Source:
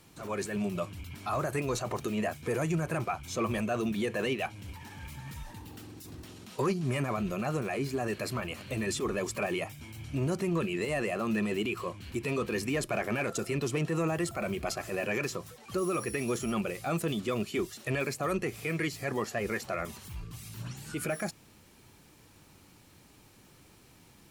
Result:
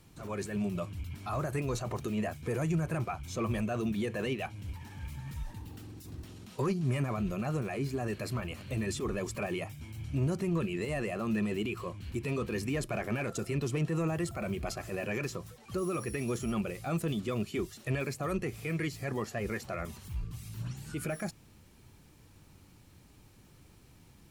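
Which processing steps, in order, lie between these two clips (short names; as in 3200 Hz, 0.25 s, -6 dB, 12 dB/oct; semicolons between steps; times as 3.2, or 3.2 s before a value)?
low shelf 160 Hz +11 dB; gain -4.5 dB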